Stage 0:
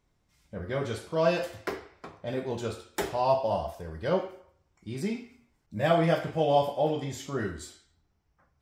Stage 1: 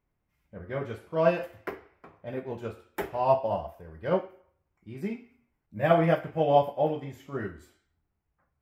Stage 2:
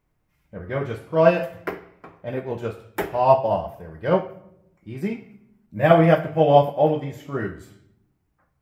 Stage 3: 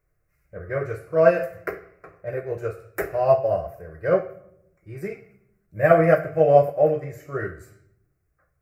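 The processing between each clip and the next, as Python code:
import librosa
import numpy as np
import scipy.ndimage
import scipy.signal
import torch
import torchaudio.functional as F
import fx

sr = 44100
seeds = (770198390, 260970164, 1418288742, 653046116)

y1 = fx.band_shelf(x, sr, hz=5700.0, db=-12.0, octaves=1.7)
y1 = fx.upward_expand(y1, sr, threshold_db=-38.0, expansion=1.5)
y1 = F.gain(torch.from_numpy(y1), 3.0).numpy()
y2 = fx.room_shoebox(y1, sr, seeds[0], volume_m3=2600.0, walls='furnished', distance_m=0.54)
y2 = F.gain(torch.from_numpy(y2), 7.0).numpy()
y3 = fx.fixed_phaser(y2, sr, hz=900.0, stages=6)
y3 = F.gain(torch.from_numpy(y3), 1.5).numpy()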